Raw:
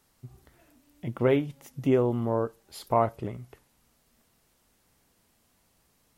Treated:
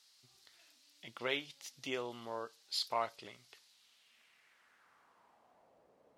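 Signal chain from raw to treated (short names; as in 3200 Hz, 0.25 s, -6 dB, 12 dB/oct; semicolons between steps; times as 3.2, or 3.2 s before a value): band-pass sweep 4400 Hz -> 550 Hz, 3.65–5.84; gain +11 dB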